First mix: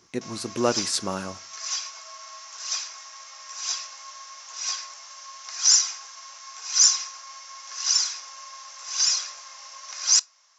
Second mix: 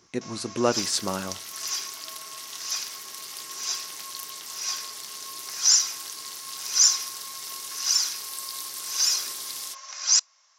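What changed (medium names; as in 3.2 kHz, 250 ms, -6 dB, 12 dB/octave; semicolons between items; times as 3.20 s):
first sound: send -10.5 dB; second sound: unmuted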